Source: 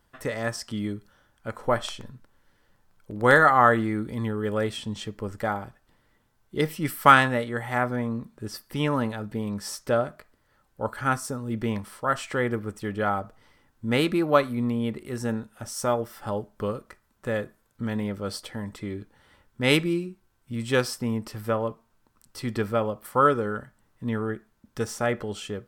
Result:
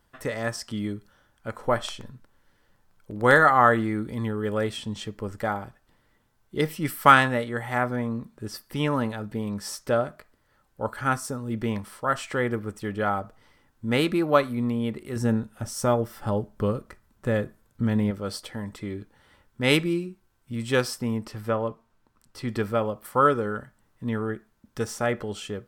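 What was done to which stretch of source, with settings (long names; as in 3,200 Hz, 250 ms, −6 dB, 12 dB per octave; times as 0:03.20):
0:15.16–0:18.11: low-shelf EQ 310 Hz +8 dB
0:21.25–0:22.49: high-shelf EQ 8,700 Hz → 5,600 Hz −8 dB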